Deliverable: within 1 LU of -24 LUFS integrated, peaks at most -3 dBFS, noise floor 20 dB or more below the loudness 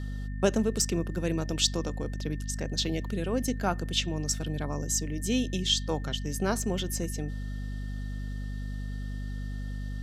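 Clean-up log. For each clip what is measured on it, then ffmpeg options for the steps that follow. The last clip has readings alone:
hum 50 Hz; highest harmonic 250 Hz; hum level -32 dBFS; steady tone 1.8 kHz; tone level -51 dBFS; loudness -31.0 LUFS; peak level -10.5 dBFS; loudness target -24.0 LUFS
-> -af "bandreject=f=50:t=h:w=4,bandreject=f=100:t=h:w=4,bandreject=f=150:t=h:w=4,bandreject=f=200:t=h:w=4,bandreject=f=250:t=h:w=4"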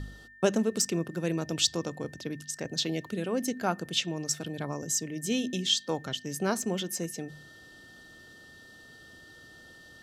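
hum not found; steady tone 1.8 kHz; tone level -51 dBFS
-> -af "bandreject=f=1800:w=30"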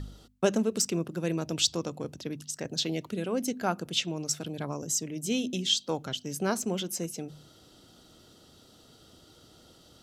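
steady tone not found; loudness -30.5 LUFS; peak level -10.5 dBFS; loudness target -24.0 LUFS
-> -af "volume=2.11"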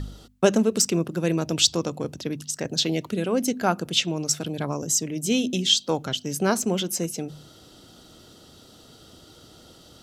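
loudness -24.0 LUFS; peak level -4.0 dBFS; noise floor -51 dBFS

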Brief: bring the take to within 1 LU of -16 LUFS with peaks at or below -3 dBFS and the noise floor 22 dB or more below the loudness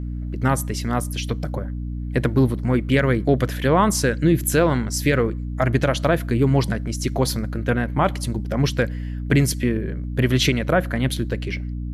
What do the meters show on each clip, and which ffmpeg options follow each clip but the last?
hum 60 Hz; highest harmonic 300 Hz; hum level -25 dBFS; loudness -21.5 LUFS; peak level -6.0 dBFS; loudness target -16.0 LUFS
-> -af "bandreject=f=60:t=h:w=6,bandreject=f=120:t=h:w=6,bandreject=f=180:t=h:w=6,bandreject=f=240:t=h:w=6,bandreject=f=300:t=h:w=6"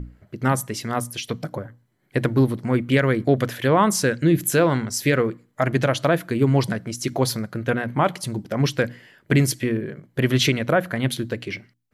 hum not found; loudness -22.0 LUFS; peak level -6.5 dBFS; loudness target -16.0 LUFS
-> -af "volume=2,alimiter=limit=0.708:level=0:latency=1"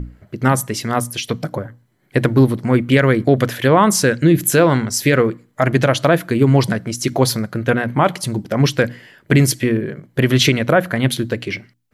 loudness -16.5 LUFS; peak level -3.0 dBFS; noise floor -58 dBFS

